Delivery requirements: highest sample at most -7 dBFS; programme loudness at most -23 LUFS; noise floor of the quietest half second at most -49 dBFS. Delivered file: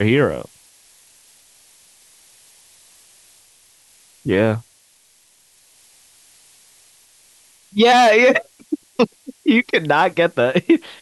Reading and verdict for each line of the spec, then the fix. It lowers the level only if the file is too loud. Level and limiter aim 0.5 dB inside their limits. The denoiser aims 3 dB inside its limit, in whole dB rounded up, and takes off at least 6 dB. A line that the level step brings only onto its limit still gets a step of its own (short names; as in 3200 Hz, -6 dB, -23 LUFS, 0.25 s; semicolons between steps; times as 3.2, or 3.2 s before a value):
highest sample -4.5 dBFS: fail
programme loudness -17.0 LUFS: fail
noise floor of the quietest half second -55 dBFS: OK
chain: gain -6.5 dB